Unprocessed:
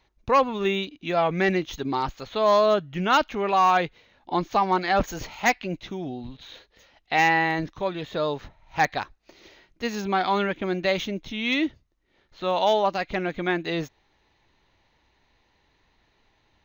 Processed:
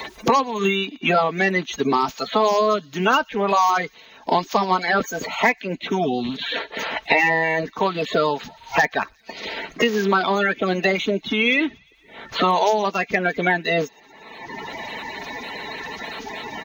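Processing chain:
spectral magnitudes quantised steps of 30 dB
high-pass filter 310 Hz 6 dB per octave
comb filter 4.5 ms, depth 43%
delay with a high-pass on its return 117 ms, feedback 48%, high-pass 4,500 Hz, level −23 dB
multiband upward and downward compressor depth 100%
level +5 dB

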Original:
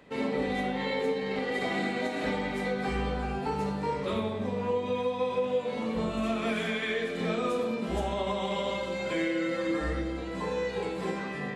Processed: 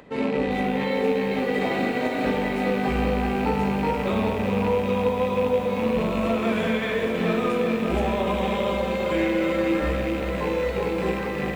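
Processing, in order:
loose part that buzzes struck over −37 dBFS, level −27 dBFS
high-shelf EQ 2,300 Hz −8 dB
upward compression, threshold −53 dBFS
feedback echo at a low word length 400 ms, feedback 80%, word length 9 bits, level −8 dB
level +6 dB

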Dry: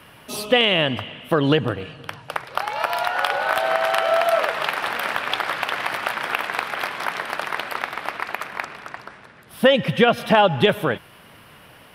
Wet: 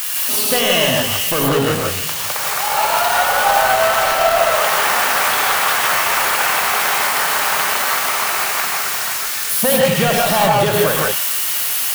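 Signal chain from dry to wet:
spike at every zero crossing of −11.5 dBFS
dynamic equaliser 950 Hz, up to +6 dB, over −33 dBFS, Q 0.88
brickwall limiter −6.5 dBFS, peak gain reduction 6.5 dB
leveller curve on the samples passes 2
reverb whose tail is shaped and stops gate 190 ms rising, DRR −2.5 dB
level −6 dB

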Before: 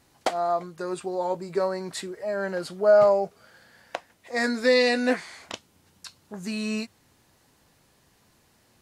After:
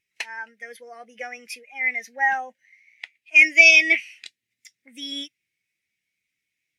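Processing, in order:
speed change +30%
high shelf with overshoot 1,500 Hz +11.5 dB, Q 3
every bin expanded away from the loudest bin 1.5 to 1
level −2.5 dB

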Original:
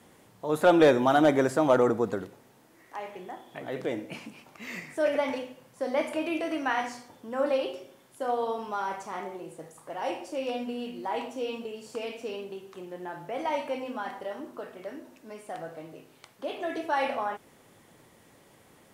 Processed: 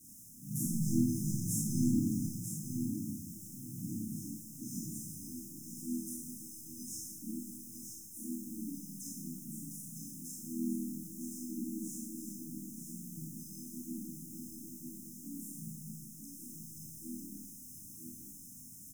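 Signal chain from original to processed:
parametric band 250 Hz −6 dB 0.39 octaves
on a send: repeating echo 950 ms, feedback 22%, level −6.5 dB
on the sum: bit reduction 9 bits
brick-wall band-stop 250–6,000 Hz
pitch-shifted copies added −3 semitones −5 dB, +5 semitones −3 dB
low-shelf EQ 180 Hz −6 dB
four-comb reverb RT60 0.72 s, combs from 25 ms, DRR −3.5 dB
level +1 dB

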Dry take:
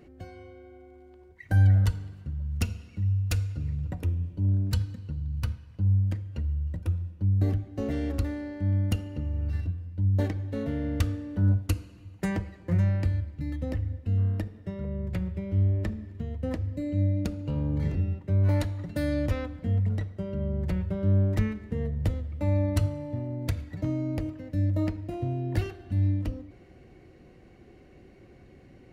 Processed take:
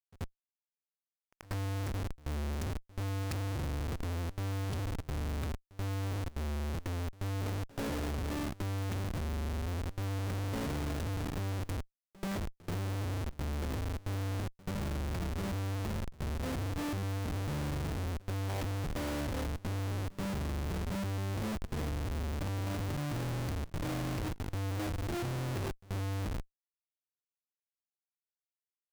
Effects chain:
comparator with hysteresis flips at −35 dBFS
echo ahead of the sound 83 ms −20.5 dB
level −7 dB

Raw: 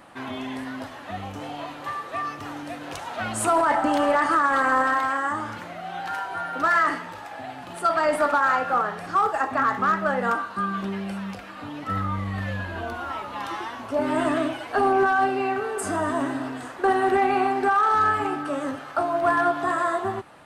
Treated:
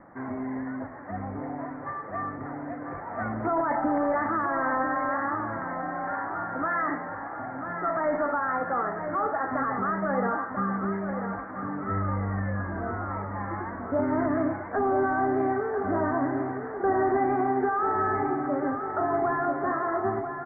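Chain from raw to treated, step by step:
Butterworth low-pass 2,100 Hz 96 dB per octave
parametric band 81 Hz −2.5 dB
brickwall limiter −16.5 dBFS, peak gain reduction 5.5 dB
tilt shelving filter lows +4 dB, about 690 Hz
repeating echo 992 ms, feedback 55%, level −8 dB
level −2 dB

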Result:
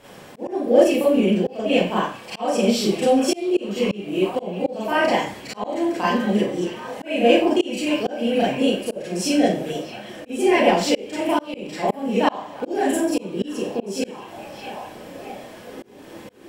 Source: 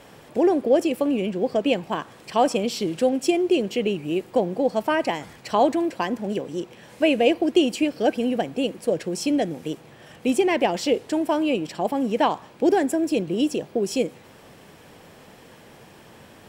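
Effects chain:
echo through a band-pass that steps 622 ms, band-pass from 2,900 Hz, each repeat −0.7 octaves, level −9 dB
four-comb reverb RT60 0.4 s, combs from 30 ms, DRR −9 dB
volume swells 335 ms
level −4 dB

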